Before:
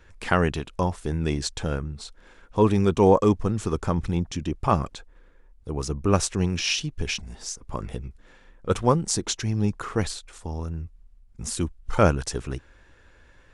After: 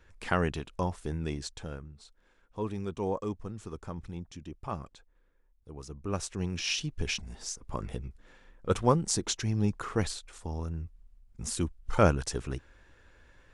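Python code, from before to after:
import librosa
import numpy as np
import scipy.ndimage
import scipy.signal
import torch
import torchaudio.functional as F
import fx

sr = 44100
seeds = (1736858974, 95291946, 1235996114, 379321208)

y = fx.gain(x, sr, db=fx.line((1.06, -6.5), (1.94, -15.0), (5.89, -15.0), (6.91, -4.0)))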